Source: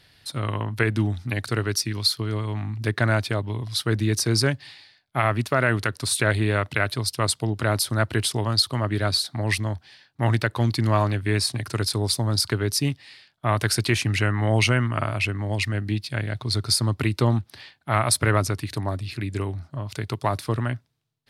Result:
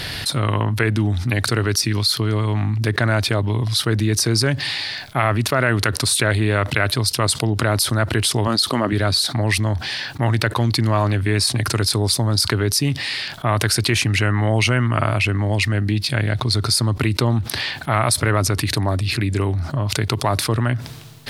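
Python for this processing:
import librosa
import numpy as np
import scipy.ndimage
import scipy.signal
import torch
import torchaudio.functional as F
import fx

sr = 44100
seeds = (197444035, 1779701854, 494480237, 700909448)

y = fx.low_shelf_res(x, sr, hz=150.0, db=-11.0, q=1.5, at=(8.47, 8.93))
y = fx.env_flatten(y, sr, amount_pct=70)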